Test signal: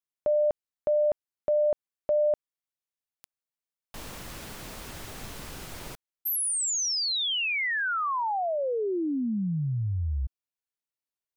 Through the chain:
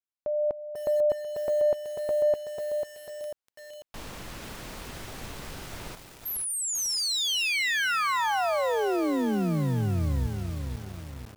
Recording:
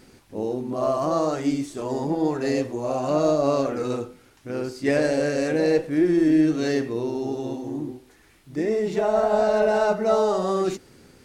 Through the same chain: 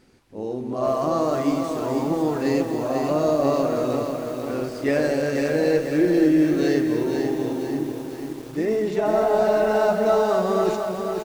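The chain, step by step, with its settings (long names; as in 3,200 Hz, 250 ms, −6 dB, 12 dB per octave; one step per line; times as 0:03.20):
high-shelf EQ 7,300 Hz −6.5 dB
automatic gain control gain up to 7 dB
single-tap delay 243 ms −12 dB
feedback echo at a low word length 494 ms, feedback 55%, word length 6 bits, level −5.5 dB
level −6 dB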